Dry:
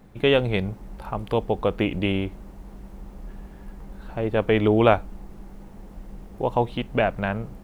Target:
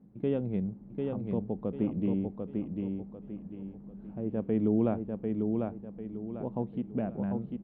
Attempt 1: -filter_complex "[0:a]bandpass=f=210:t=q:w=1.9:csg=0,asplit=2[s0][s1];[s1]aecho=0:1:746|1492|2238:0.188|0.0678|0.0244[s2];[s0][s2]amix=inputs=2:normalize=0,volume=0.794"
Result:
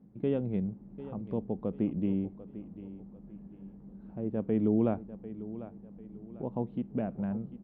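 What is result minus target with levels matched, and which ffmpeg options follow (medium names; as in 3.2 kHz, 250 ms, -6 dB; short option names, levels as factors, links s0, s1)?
echo-to-direct -10.5 dB
-filter_complex "[0:a]bandpass=f=210:t=q:w=1.9:csg=0,asplit=2[s0][s1];[s1]aecho=0:1:746|1492|2238|2984|3730:0.631|0.227|0.0818|0.0294|0.0106[s2];[s0][s2]amix=inputs=2:normalize=0,volume=0.794"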